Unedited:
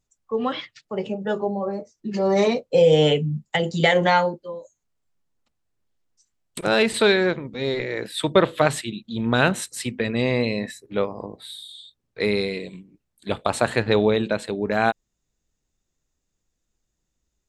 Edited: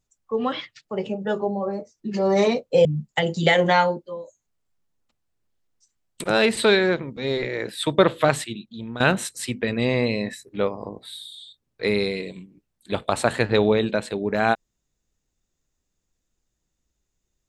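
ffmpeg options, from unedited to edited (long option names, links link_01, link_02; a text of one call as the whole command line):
ffmpeg -i in.wav -filter_complex "[0:a]asplit=3[link_01][link_02][link_03];[link_01]atrim=end=2.852[link_04];[link_02]atrim=start=3.218:end=9.37,asetpts=PTS-STARTPTS,afade=type=out:start_time=5.502:duration=0.65:silence=0.177828[link_05];[link_03]atrim=start=9.37,asetpts=PTS-STARTPTS,afade=type=in:duration=0.004:curve=hsin:silence=0.177828[link_06];[link_05][link_06]concat=n=2:v=0:a=1[link_07];[link_04][link_07]acrossfade=duration=0.004:curve1=hsin:curve2=hsin" out.wav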